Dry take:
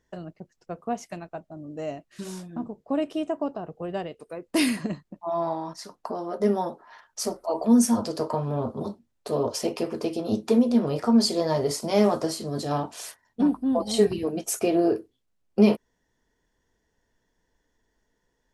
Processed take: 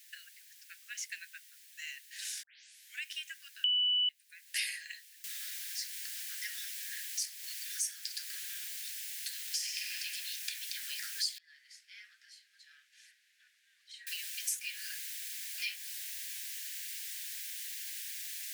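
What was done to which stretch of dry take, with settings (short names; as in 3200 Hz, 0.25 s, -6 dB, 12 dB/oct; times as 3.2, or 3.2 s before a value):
2.43 tape start 0.60 s
3.64–4.09 bleep 2970 Hz -14 dBFS
5.24 noise floor step -64 dB -48 dB
9.53–9.95 reverb throw, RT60 2.3 s, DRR -1.5 dB
11.38–14.07 band-pass 110 Hz, Q 0.52
whole clip: steep high-pass 1600 Hz 96 dB/oct; compressor 3:1, threshold -43 dBFS; gain +6.5 dB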